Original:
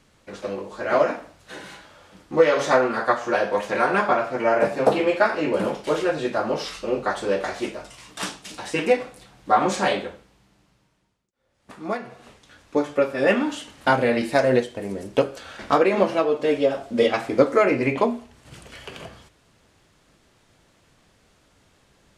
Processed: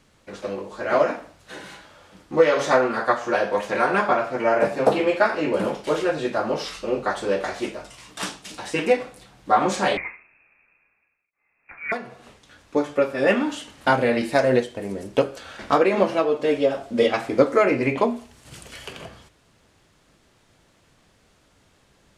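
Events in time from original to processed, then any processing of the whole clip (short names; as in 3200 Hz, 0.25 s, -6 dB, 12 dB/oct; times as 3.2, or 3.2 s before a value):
9.97–11.92 inverted band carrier 2600 Hz
18.16–18.93 high shelf 4300 Hz +8 dB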